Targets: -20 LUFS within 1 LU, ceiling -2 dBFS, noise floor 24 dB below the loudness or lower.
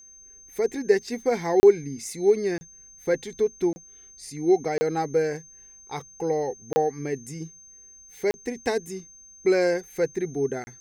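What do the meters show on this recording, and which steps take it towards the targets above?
dropouts 7; longest dropout 30 ms; steady tone 6300 Hz; tone level -47 dBFS; loudness -25.5 LUFS; peak -6.0 dBFS; loudness target -20.0 LUFS
-> interpolate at 1.6/2.58/3.73/4.78/6.73/8.31/10.64, 30 ms; notch 6300 Hz, Q 30; gain +5.5 dB; limiter -2 dBFS

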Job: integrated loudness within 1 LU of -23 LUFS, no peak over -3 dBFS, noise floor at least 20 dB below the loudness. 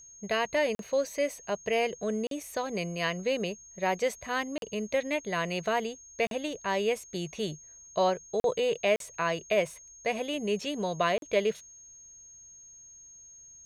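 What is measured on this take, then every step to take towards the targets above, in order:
dropouts 7; longest dropout 42 ms; steady tone 6500 Hz; tone level -49 dBFS; loudness -30.5 LUFS; peak -13.0 dBFS; loudness target -23.0 LUFS
-> interpolate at 0.75/2.27/4.58/6.27/8.4/8.96/11.18, 42 ms; notch 6500 Hz, Q 30; gain +7.5 dB

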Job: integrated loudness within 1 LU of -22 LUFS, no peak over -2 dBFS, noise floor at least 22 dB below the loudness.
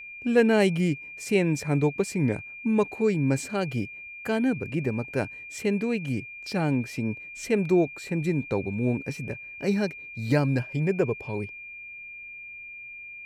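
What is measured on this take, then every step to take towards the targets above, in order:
steady tone 2400 Hz; tone level -39 dBFS; loudness -27.0 LUFS; peak -9.0 dBFS; loudness target -22.0 LUFS
-> notch 2400 Hz, Q 30; gain +5 dB

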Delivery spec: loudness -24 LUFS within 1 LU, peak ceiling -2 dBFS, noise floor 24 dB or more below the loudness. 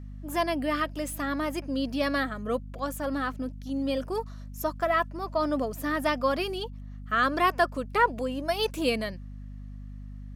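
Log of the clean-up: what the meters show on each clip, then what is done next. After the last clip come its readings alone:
hum 50 Hz; harmonics up to 250 Hz; hum level -38 dBFS; loudness -29.0 LUFS; peak -10.5 dBFS; loudness target -24.0 LUFS
-> de-hum 50 Hz, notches 5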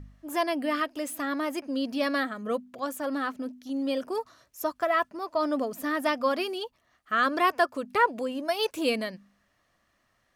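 hum none; loudness -29.0 LUFS; peak -11.0 dBFS; loudness target -24.0 LUFS
-> gain +5 dB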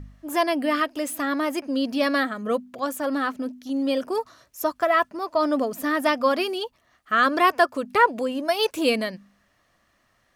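loudness -24.0 LUFS; peak -6.0 dBFS; noise floor -66 dBFS

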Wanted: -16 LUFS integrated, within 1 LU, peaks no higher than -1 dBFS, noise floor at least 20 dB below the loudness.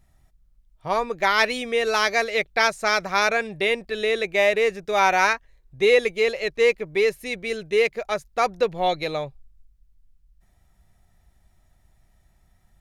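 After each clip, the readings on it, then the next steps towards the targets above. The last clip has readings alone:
loudness -22.0 LUFS; peak -4.5 dBFS; loudness target -16.0 LUFS
-> gain +6 dB; limiter -1 dBFS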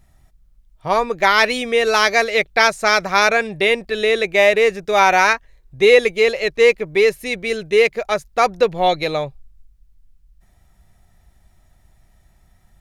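loudness -16.0 LUFS; peak -1.0 dBFS; noise floor -56 dBFS

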